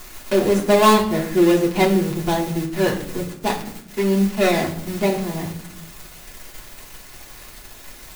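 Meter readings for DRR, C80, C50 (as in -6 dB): -4.0 dB, 13.0 dB, 9.5 dB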